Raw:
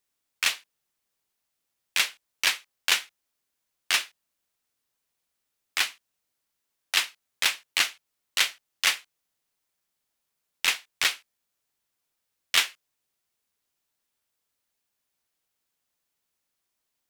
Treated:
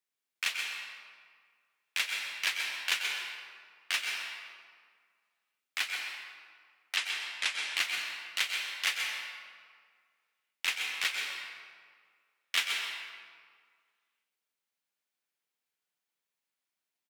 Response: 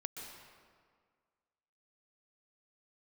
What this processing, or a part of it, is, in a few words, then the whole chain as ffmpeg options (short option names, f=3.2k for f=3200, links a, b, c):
PA in a hall: -filter_complex "[0:a]asplit=3[a][b][c];[a]afade=t=out:st=6.96:d=0.02[d];[b]lowpass=f=10k:w=0.5412,lowpass=f=10k:w=1.3066,afade=t=in:st=6.96:d=0.02,afade=t=out:st=7.66:d=0.02[e];[c]afade=t=in:st=7.66:d=0.02[f];[d][e][f]amix=inputs=3:normalize=0,highpass=f=140:w=0.5412,highpass=f=140:w=1.3066,equalizer=f=2.2k:t=o:w=1.7:g=5,aecho=1:1:129:0.316[g];[1:a]atrim=start_sample=2205[h];[g][h]afir=irnorm=-1:irlink=0,volume=-7.5dB"